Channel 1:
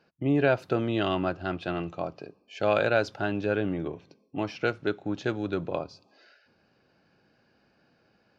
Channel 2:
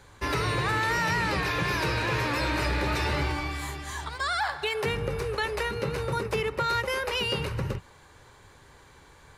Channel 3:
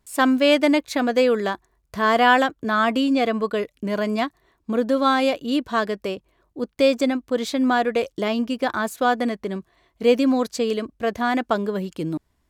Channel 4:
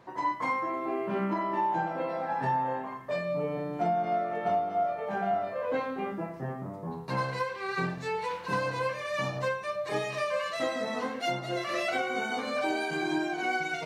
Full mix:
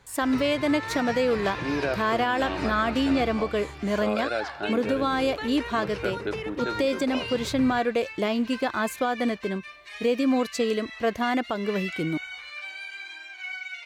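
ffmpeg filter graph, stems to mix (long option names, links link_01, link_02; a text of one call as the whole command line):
ffmpeg -i stem1.wav -i stem2.wav -i stem3.wav -i stem4.wav -filter_complex "[0:a]highpass=220,adelay=1400,volume=-2.5dB[link_01];[1:a]lowpass=7300,volume=-5.5dB[link_02];[2:a]volume=-1.5dB[link_03];[3:a]highpass=frequency=2300:width_type=q:width=1.7,adynamicequalizer=threshold=0.00316:dfrequency=4600:dqfactor=0.7:tfrequency=4600:tqfactor=0.7:attack=5:release=100:ratio=0.375:range=3.5:mode=cutabove:tftype=highshelf,volume=-3dB[link_04];[link_01][link_02][link_03][link_04]amix=inputs=4:normalize=0,alimiter=limit=-15dB:level=0:latency=1:release=193" out.wav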